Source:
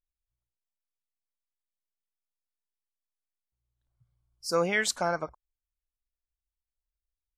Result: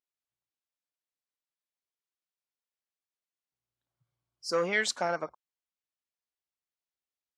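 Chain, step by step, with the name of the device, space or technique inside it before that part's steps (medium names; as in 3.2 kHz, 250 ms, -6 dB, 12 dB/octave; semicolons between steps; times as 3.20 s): public-address speaker with an overloaded transformer (transformer saturation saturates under 680 Hz; band-pass 210–6700 Hz)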